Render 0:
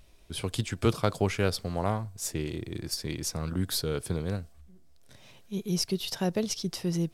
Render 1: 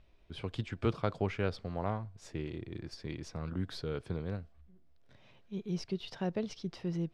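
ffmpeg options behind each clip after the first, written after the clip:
ffmpeg -i in.wav -af "lowpass=3000,volume=-6dB" out.wav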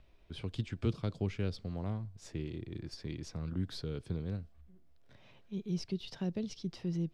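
ffmpeg -i in.wav -filter_complex "[0:a]acrossover=split=360|3000[link_01][link_02][link_03];[link_02]acompressor=threshold=-59dB:ratio=2[link_04];[link_01][link_04][link_03]amix=inputs=3:normalize=0,volume=1dB" out.wav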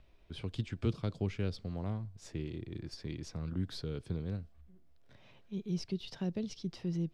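ffmpeg -i in.wav -af anull out.wav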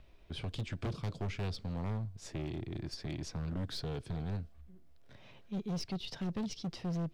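ffmpeg -i in.wav -af "asoftclip=type=hard:threshold=-36.5dB,volume=3.5dB" out.wav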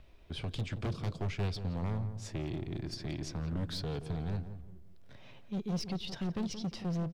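ffmpeg -i in.wav -filter_complex "[0:a]asplit=2[link_01][link_02];[link_02]adelay=174,lowpass=frequency=1100:poles=1,volume=-9.5dB,asplit=2[link_03][link_04];[link_04]adelay=174,lowpass=frequency=1100:poles=1,volume=0.33,asplit=2[link_05][link_06];[link_06]adelay=174,lowpass=frequency=1100:poles=1,volume=0.33,asplit=2[link_07][link_08];[link_08]adelay=174,lowpass=frequency=1100:poles=1,volume=0.33[link_09];[link_01][link_03][link_05][link_07][link_09]amix=inputs=5:normalize=0,volume=1.5dB" out.wav

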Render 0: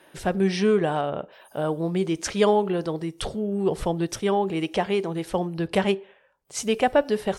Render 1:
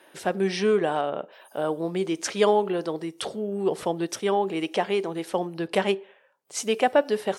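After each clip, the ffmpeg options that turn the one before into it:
ffmpeg -i in.wav -af "highpass=250" out.wav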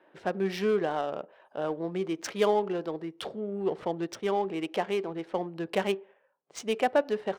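ffmpeg -i in.wav -af "adynamicsmooth=sensitivity=4.5:basefreq=1800,volume=-4.5dB" out.wav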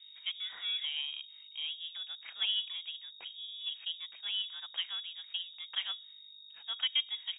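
ffmpeg -i in.wav -filter_complex "[0:a]acrossover=split=420 2500:gain=0.178 1 0.0631[link_01][link_02][link_03];[link_01][link_02][link_03]amix=inputs=3:normalize=0,aeval=exprs='val(0)+0.00447*(sin(2*PI*50*n/s)+sin(2*PI*2*50*n/s)/2+sin(2*PI*3*50*n/s)/3+sin(2*PI*4*50*n/s)/4+sin(2*PI*5*50*n/s)/5)':channel_layout=same,lowpass=frequency=3200:width_type=q:width=0.5098,lowpass=frequency=3200:width_type=q:width=0.6013,lowpass=frequency=3200:width_type=q:width=0.9,lowpass=frequency=3200:width_type=q:width=2.563,afreqshift=-3800,volume=-5.5dB" out.wav

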